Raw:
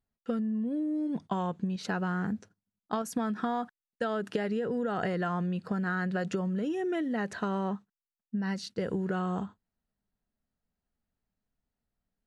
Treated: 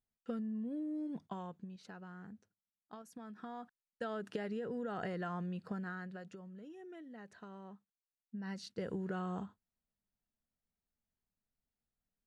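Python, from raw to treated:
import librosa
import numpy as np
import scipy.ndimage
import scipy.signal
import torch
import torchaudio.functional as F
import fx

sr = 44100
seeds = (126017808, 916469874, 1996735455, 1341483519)

y = fx.gain(x, sr, db=fx.line((1.03, -8.5), (1.92, -19.5), (3.17, -19.5), (4.05, -9.0), (5.73, -9.0), (6.36, -20.0), (7.74, -20.0), (8.69, -8.0)))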